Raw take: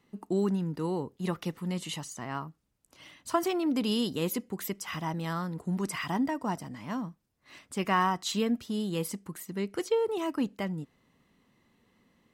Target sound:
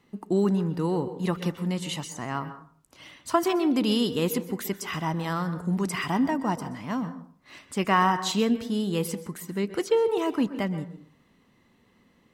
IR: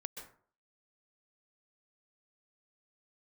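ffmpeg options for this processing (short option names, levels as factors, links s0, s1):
-filter_complex "[0:a]asplit=2[s0][s1];[1:a]atrim=start_sample=2205,highshelf=f=8500:g=-10[s2];[s1][s2]afir=irnorm=-1:irlink=0,volume=1.12[s3];[s0][s3]amix=inputs=2:normalize=0"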